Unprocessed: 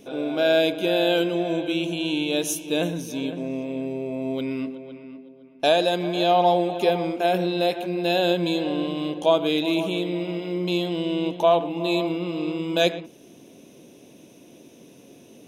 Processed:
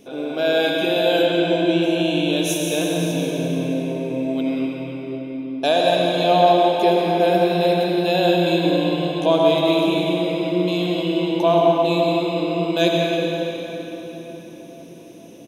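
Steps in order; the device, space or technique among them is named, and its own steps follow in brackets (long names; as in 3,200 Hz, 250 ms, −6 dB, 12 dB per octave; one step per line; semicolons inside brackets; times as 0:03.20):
cave (single-tap delay 178 ms −10 dB; convolution reverb RT60 4.6 s, pre-delay 65 ms, DRR −1.5 dB)
0:01.25–0:01.82: low-pass filter 8,800 Hz 12 dB per octave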